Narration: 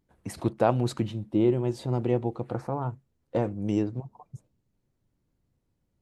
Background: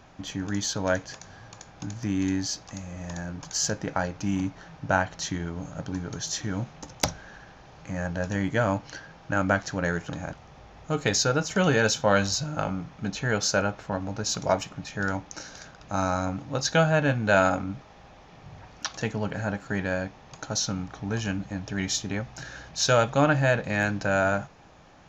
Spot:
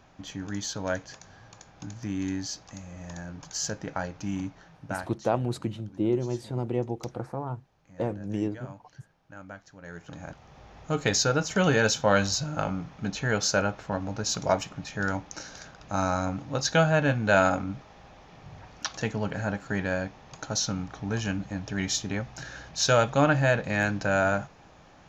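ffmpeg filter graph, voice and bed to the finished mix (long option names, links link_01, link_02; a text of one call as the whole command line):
ffmpeg -i stem1.wav -i stem2.wav -filter_complex "[0:a]adelay=4650,volume=-3dB[link_01];[1:a]volume=15dB,afade=type=out:start_time=4.37:duration=0.94:silence=0.16788,afade=type=in:start_time=9.82:duration=0.91:silence=0.105925[link_02];[link_01][link_02]amix=inputs=2:normalize=0" out.wav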